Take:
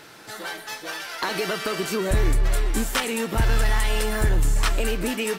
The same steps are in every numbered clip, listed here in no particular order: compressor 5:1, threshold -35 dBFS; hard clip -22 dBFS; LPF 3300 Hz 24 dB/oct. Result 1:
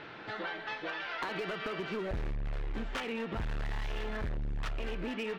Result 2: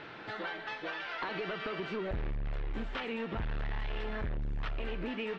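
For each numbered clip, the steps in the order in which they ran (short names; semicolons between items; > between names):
LPF > hard clip > compressor; hard clip > compressor > LPF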